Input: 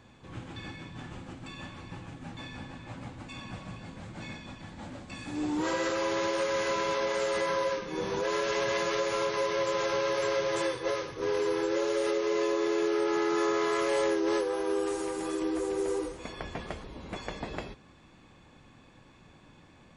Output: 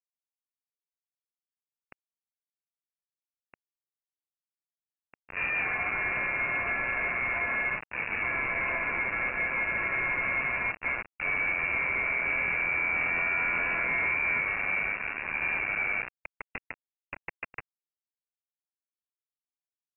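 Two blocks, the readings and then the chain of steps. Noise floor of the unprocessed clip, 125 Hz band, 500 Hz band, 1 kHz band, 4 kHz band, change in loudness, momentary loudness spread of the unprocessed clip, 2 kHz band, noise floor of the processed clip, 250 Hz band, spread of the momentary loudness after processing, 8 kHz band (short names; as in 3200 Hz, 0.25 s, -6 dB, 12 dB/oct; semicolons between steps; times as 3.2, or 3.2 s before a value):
-57 dBFS, -4.0 dB, -14.5 dB, -2.5 dB, under -15 dB, +2.5 dB, 16 LU, +10.5 dB, under -85 dBFS, -13.5 dB, 15 LU, under -35 dB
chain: bit-crush 5-bit; wrapped overs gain 22 dB; inverted band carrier 2700 Hz; gain -1 dB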